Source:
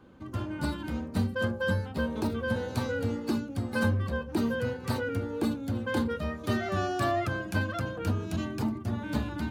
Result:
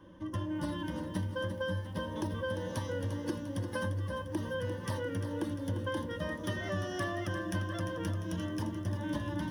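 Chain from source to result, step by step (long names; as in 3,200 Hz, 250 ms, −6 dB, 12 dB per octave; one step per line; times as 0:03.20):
EQ curve with evenly spaced ripples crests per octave 1.2, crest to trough 14 dB
downward compressor, threshold −30 dBFS, peak gain reduction 11 dB
feedback echo at a low word length 348 ms, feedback 55%, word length 10 bits, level −9.5 dB
level −2 dB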